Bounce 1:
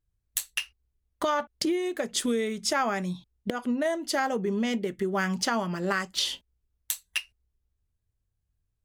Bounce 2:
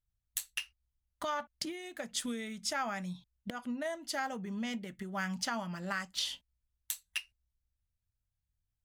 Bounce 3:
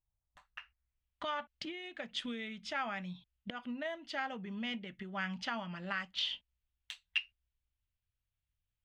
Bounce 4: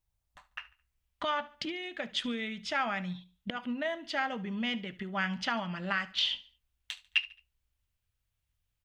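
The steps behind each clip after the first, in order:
parametric band 400 Hz −13.5 dB 0.66 octaves; notch filter 1,100 Hz, Q 19; level −7 dB
low-pass filter sweep 890 Hz → 3,000 Hz, 0:00.32–0:01.07; level −3.5 dB
repeating echo 72 ms, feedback 37%, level −19 dB; level +6 dB

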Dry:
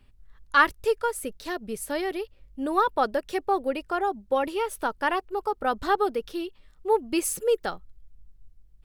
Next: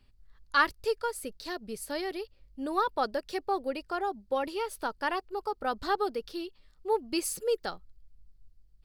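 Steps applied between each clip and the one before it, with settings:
parametric band 4,600 Hz +10 dB 0.38 octaves
level −5.5 dB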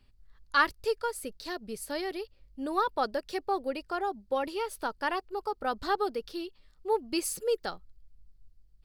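no processing that can be heard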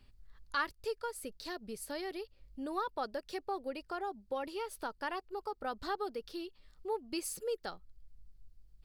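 downward compressor 1.5 to 1, threshold −52 dBFS, peak gain reduction 12 dB
level +1.5 dB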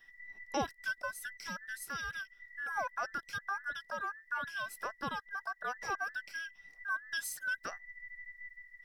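frequency inversion band by band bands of 2,000 Hz

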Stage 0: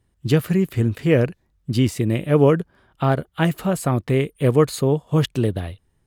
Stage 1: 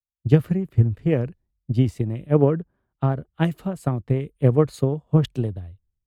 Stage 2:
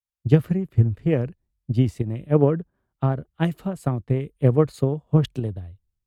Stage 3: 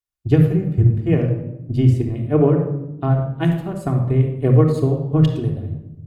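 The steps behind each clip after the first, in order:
spectral tilt −2.5 dB per octave; transient designer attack +8 dB, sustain +4 dB; multiband upward and downward expander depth 100%; level −12 dB
pitch vibrato 0.91 Hz 13 cents; in parallel at +3 dB: fake sidechain pumping 89 BPM, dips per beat 1, −16 dB, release 104 ms; on the sum: level −8 dB
rectangular room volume 3,500 cubic metres, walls furnished, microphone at 3.3 metres

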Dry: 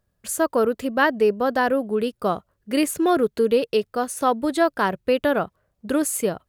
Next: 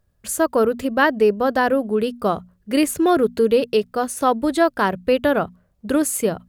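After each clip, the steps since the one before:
low-shelf EQ 120 Hz +8 dB
mains-hum notches 60/120/180/240 Hz
level +2 dB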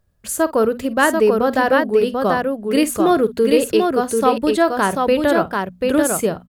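multi-tap delay 50/739 ms −16.5/−3.5 dB
level +1 dB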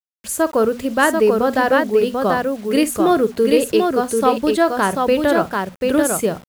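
bit reduction 7 bits

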